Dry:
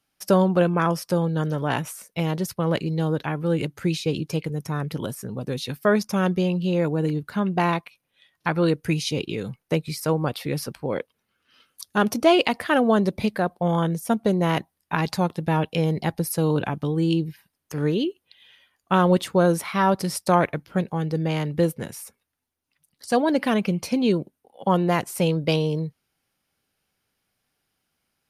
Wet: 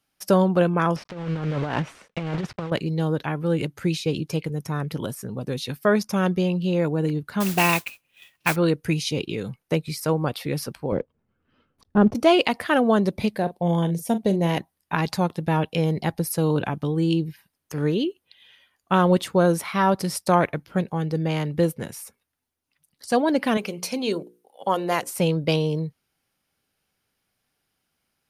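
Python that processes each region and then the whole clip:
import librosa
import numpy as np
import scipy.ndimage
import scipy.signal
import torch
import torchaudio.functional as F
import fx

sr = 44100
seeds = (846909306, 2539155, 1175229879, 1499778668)

y = fx.chain(x, sr, fx.block_float(bits=3),
    fx.lowpass(hz=2800.0, slope=12),
    fx.over_compress(threshold_db=-26.0, ratio=-0.5), at=(0.96, 2.72))
y = fx.chain(y, sr, fx.peak_eq(hz=2600.0, db=14.5, octaves=0.45),
    fx.mod_noise(seeds[0], snr_db=10), at=(7.4, 8.56))
y = fx.chain(y, sr, fx.block_float(bits=5),
    fx.lowpass(hz=1000.0, slope=6),
    fx.tilt_eq(slope=-3.0), at=(10.92, 12.15))
y = fx.chain(y, sr, fx.peak_eq(hz=1300.0, db=-14.5, octaves=0.5),
    fx.doubler(ms=41.0, db=-12.5), at=(13.34, 14.58))
y = fx.chain(y, sr, fx.bass_treble(bass_db=-13, treble_db=5),
    fx.hum_notches(base_hz=60, count=9), at=(23.57, 25.1))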